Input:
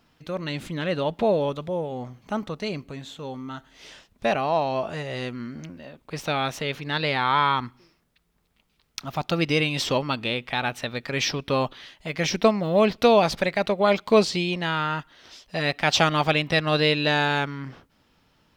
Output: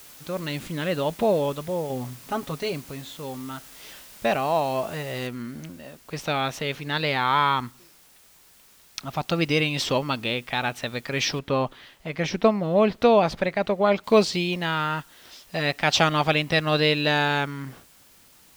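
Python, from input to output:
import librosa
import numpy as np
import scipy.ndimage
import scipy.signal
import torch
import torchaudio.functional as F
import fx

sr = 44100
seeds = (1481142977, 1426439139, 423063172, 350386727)

y = fx.comb(x, sr, ms=7.3, depth=0.66, at=(1.89, 2.73))
y = fx.noise_floor_step(y, sr, seeds[0], at_s=5.27, before_db=-47, after_db=-55, tilt_db=0.0)
y = fx.high_shelf(y, sr, hz=3600.0, db=-10.5, at=(11.39, 14.04))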